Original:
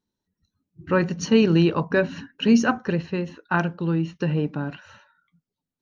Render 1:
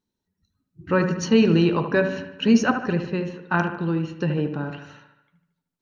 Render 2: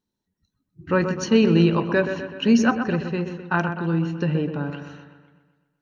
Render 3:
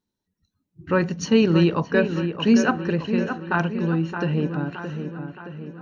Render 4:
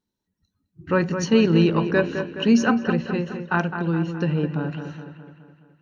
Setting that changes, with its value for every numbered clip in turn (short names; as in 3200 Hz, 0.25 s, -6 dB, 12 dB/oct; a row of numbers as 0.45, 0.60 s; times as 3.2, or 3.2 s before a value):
dark delay, time: 75, 126, 620, 210 ms